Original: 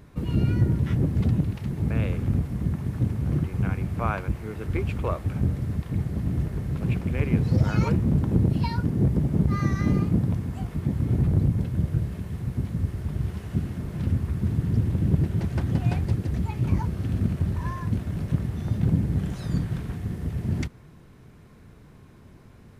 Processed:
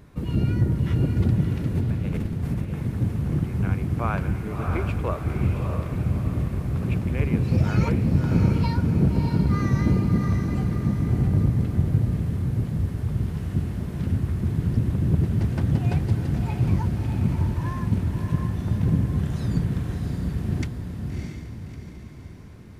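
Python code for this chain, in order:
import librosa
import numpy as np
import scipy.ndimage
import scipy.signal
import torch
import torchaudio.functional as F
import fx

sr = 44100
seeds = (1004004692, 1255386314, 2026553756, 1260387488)

p1 = fx.over_compress(x, sr, threshold_db=-29.0, ratio=-0.5, at=(1.75, 2.73))
y = p1 + fx.echo_diffused(p1, sr, ms=637, feedback_pct=47, wet_db=-4.0, dry=0)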